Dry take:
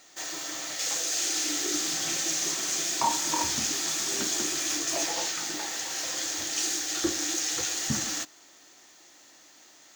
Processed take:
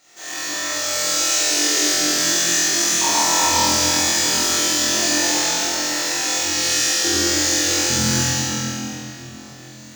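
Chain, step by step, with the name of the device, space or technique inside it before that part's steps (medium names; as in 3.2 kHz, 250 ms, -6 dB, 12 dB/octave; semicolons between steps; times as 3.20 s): tunnel (flutter echo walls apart 4 m, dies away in 1.4 s; reverberation RT60 3.5 s, pre-delay 44 ms, DRR -8.5 dB); trim -3.5 dB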